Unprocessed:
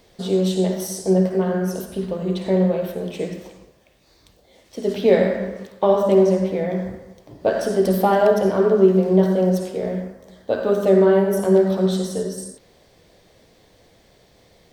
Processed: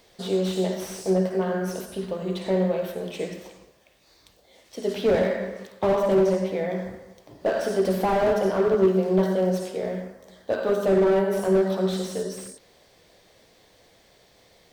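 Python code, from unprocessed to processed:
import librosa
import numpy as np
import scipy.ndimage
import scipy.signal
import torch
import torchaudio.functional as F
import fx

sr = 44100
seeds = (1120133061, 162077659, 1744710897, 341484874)

y = fx.low_shelf(x, sr, hz=420.0, db=-8.0)
y = fx.slew_limit(y, sr, full_power_hz=74.0)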